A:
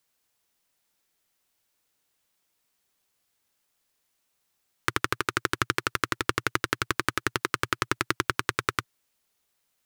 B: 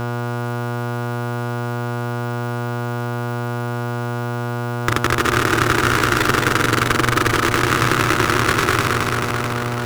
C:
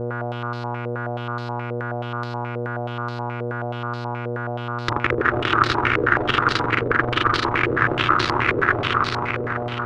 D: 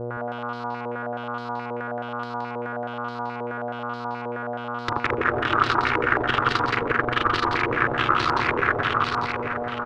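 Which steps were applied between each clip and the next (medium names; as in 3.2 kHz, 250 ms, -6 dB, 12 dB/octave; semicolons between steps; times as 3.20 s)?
backward echo that repeats 109 ms, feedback 79%, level -4 dB; mains buzz 120 Hz, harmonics 12, -42 dBFS -2 dB/octave; power-law waveshaper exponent 0.5
step-sequenced low-pass 9.4 Hz 500–4300 Hz; trim -6 dB
peaking EQ 840 Hz +4.5 dB 1.4 oct; on a send: delay 171 ms -5 dB; on the sum: trim -5.5 dB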